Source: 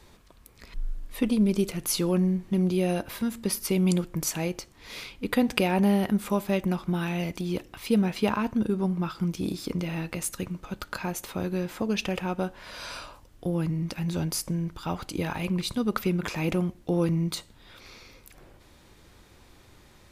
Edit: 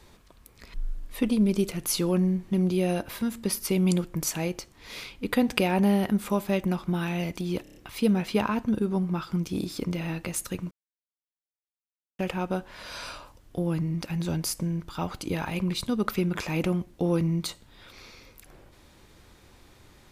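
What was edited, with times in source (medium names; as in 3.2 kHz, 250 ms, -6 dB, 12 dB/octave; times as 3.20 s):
7.63 s: stutter 0.03 s, 5 plays
10.59–12.07 s: mute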